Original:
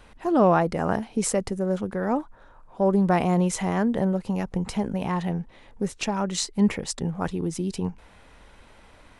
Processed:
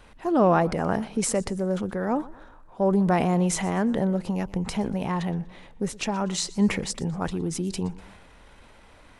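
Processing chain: transient shaper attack 0 dB, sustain +5 dB; modulated delay 120 ms, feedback 39%, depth 135 cents, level -20.5 dB; trim -1 dB

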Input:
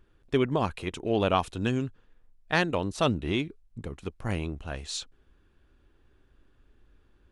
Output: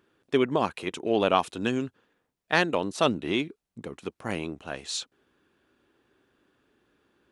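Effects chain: high-pass 210 Hz 12 dB/octave; trim +2.5 dB

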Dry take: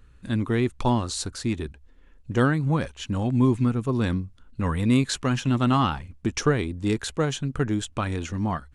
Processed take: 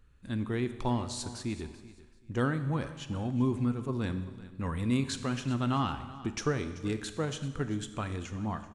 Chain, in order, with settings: on a send: feedback delay 385 ms, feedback 26%, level -17.5 dB; on the sum: Schroeder reverb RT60 1.3 s, combs from 29 ms, DRR 10.5 dB; trim -8.5 dB

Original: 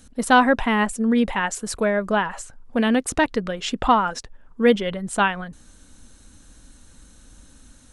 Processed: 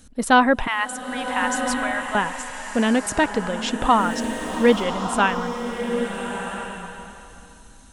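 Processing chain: 0.67–2.15 s: high-pass 860 Hz 24 dB/octave; 3.97–4.82 s: added noise pink -49 dBFS; swelling reverb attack 1350 ms, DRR 5.5 dB

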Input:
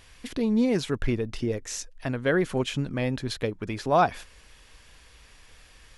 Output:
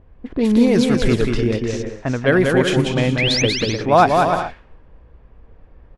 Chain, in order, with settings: painted sound rise, 3.18–3.42 s, 1.9–6.6 kHz -28 dBFS; bouncing-ball echo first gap 190 ms, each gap 0.6×, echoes 5; level-controlled noise filter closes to 500 Hz, open at -20 dBFS; trim +8 dB

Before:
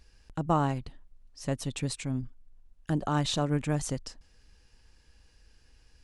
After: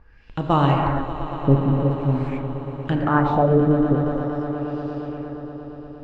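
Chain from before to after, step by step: 0.83–1.60 s: tilt EQ -2 dB/octave; gated-style reverb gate 370 ms flat, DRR 0.5 dB; LFO low-pass sine 0.46 Hz 370–3600 Hz; echo with a slow build-up 117 ms, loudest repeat 5, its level -17 dB; trim +6 dB

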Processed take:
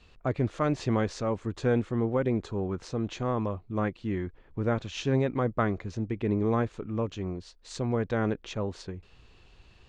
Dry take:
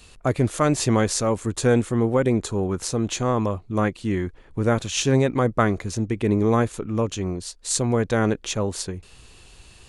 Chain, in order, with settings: distance through air 180 m; trim -6.5 dB

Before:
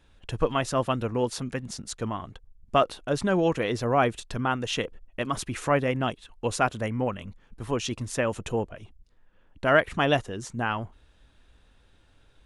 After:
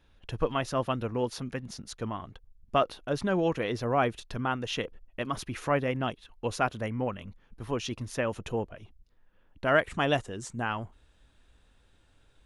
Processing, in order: peaking EQ 7.9 kHz -10 dB 0.36 oct, from 9.74 s +5.5 dB; trim -3.5 dB

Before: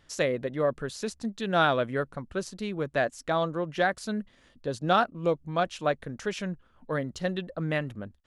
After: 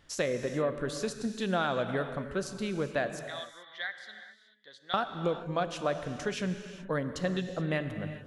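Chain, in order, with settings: 3.19–4.94 s: two resonant band-passes 2.6 kHz, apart 0.81 oct; compression, threshold -26 dBFS, peak gain reduction 8 dB; gated-style reverb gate 450 ms flat, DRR 8 dB

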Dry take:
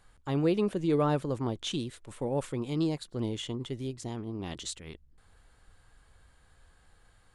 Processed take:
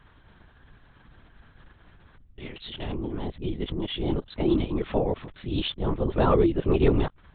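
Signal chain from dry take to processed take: reverse the whole clip; LPC vocoder at 8 kHz whisper; trim +6 dB

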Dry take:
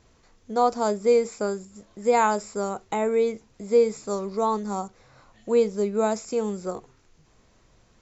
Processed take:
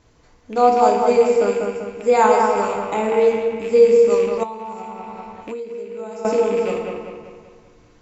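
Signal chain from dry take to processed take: rattle on loud lows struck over -39 dBFS, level -27 dBFS; on a send: feedback echo behind a low-pass 194 ms, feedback 48%, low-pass 2.8 kHz, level -3.5 dB; on the sum: FDN reverb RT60 0.87 s, low-frequency decay 1×, high-frequency decay 0.95×, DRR 1 dB; 4.43–6.25 s: compression 12:1, threshold -30 dBFS, peak gain reduction 19.5 dB; treble shelf 5.1 kHz -4.5 dB; trim +2 dB

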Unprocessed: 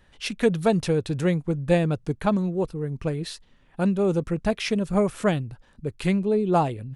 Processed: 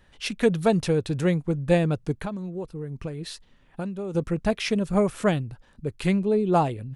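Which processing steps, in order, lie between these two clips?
2.20–4.15 s: compression 5:1, threshold -30 dBFS, peak gain reduction 12 dB

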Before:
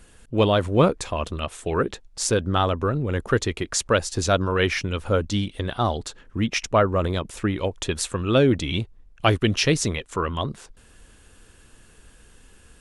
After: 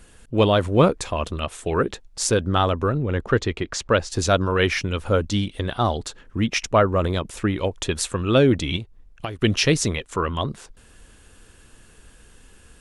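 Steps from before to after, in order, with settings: 2.93–4.10 s: distance through air 95 m; 8.76–9.39 s: compression 12:1, threshold -29 dBFS, peak gain reduction 16 dB; trim +1.5 dB

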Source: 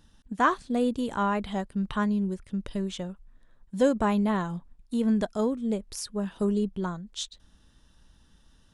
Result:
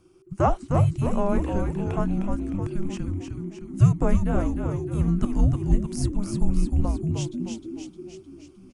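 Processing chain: fifteen-band graphic EQ 160 Hz -9 dB, 400 Hz +12 dB, 4 kHz -11 dB; frequency-shifting echo 307 ms, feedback 58%, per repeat -86 Hz, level -5 dB; frequency shift -390 Hz; trim +1 dB

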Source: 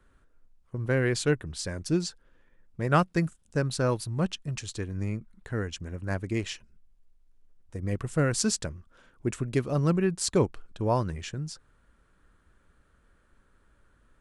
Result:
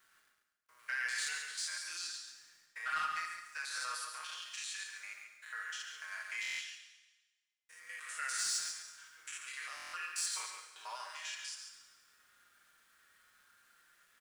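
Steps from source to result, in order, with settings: spectrogram pixelated in time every 100 ms; high-pass 1.4 kHz 24 dB/octave; comb 6.4 ms, depth 69%; in parallel at 0 dB: compression 4:1, threshold -50 dBFS, peak gain reduction 17 dB; on the sum: flange 0.17 Hz, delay 4.5 ms, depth 1.9 ms, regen +53%; word length cut 12-bit, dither none; saturation -30.5 dBFS, distortion -16 dB; echo from a far wall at 24 m, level -6 dB; Schroeder reverb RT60 1.2 s, combs from 27 ms, DRR 5.5 dB; buffer glitch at 6.41/9.75 s, samples 1024, times 7; trim +1.5 dB

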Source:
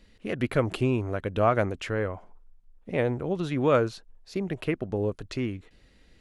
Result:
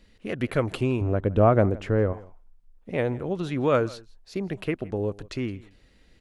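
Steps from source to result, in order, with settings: 1.01–2.13 s: tilt shelf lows +8 dB, about 1.1 kHz; on a send: delay 165 ms -21.5 dB

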